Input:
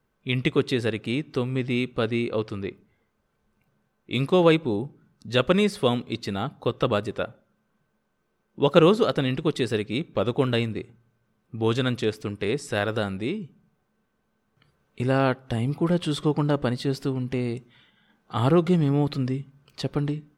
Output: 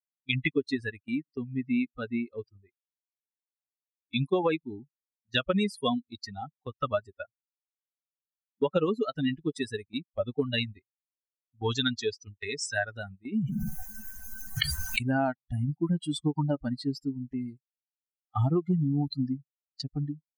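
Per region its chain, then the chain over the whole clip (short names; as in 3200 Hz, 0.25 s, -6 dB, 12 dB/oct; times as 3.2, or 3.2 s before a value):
10.58–12.75 LPF 5600 Hz + high shelf 3600 Hz +11 dB
13.32–15.03 high shelf 2500 Hz +8 dB + fast leveller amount 100%
whole clip: per-bin expansion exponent 3; gate -51 dBFS, range -11 dB; compressor 10:1, threshold -30 dBFS; gain +7.5 dB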